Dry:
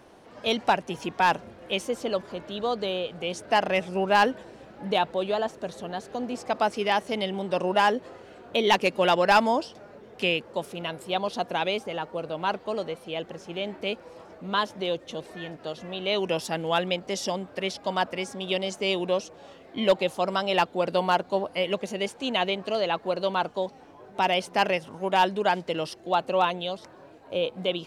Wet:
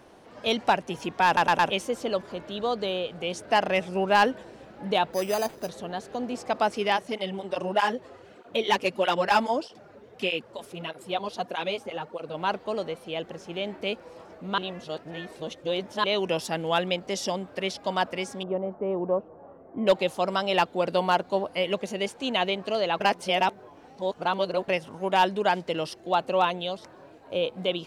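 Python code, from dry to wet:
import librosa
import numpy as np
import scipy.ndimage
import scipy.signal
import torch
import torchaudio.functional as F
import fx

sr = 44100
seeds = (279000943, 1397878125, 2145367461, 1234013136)

y = fx.resample_bad(x, sr, factor=8, down='none', up='hold', at=(5.13, 5.69))
y = fx.flanger_cancel(y, sr, hz=1.6, depth_ms=6.7, at=(6.96, 12.33), fade=0.02)
y = fx.lowpass(y, sr, hz=1200.0, slope=24, at=(18.43, 19.87))
y = fx.edit(y, sr, fx.stutter_over(start_s=1.26, slice_s=0.11, count=4),
    fx.reverse_span(start_s=14.58, length_s=1.46),
    fx.reverse_span(start_s=23.0, length_s=1.68), tone=tone)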